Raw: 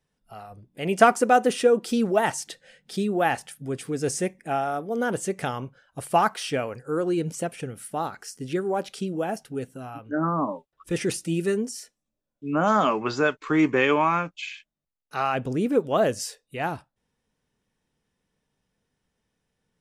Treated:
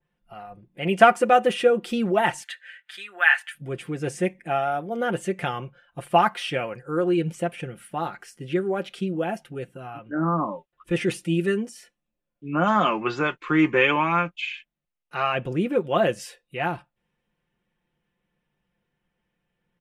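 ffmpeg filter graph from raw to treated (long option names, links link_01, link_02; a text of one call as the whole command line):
ffmpeg -i in.wav -filter_complex "[0:a]asettb=1/sr,asplit=3[link_01][link_02][link_03];[link_01]atrim=end=2.434[link_04];[link_02]atrim=start=2.43:end=3.55,asetpts=PTS-STARTPTS,afade=type=in:duration=0.004:curve=qsin,afade=type=out:start_time=1.116:duration=0.004:curve=qsin,highpass=frequency=1600:width_type=q:width=3.4,bandreject=frequency=5400:width=11[link_05];[link_03]atrim=start=3.546[link_06];[link_04][link_05]acrossfade=duration=0.004:curve1=hsin:curve2=qsin[link_07];[link_07][link_06]acrossfade=duration=0.004:curve1=qsin:curve2=hsin,highshelf=frequency=3800:width_type=q:width=1.5:gain=-10.5,aecho=1:1:5.7:0.59,adynamicequalizer=threshold=0.0158:dfrequency=2500:dqfactor=0.7:tfrequency=2500:tqfactor=0.7:attack=5:release=100:ratio=0.375:range=2.5:mode=boostabove:tftype=highshelf,volume=-1dB" out.wav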